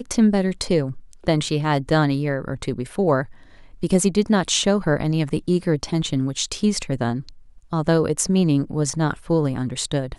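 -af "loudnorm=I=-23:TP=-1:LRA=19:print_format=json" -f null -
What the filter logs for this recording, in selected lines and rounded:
"input_i" : "-21.6",
"input_tp" : "-5.1",
"input_lra" : "1.6",
"input_thresh" : "-31.9",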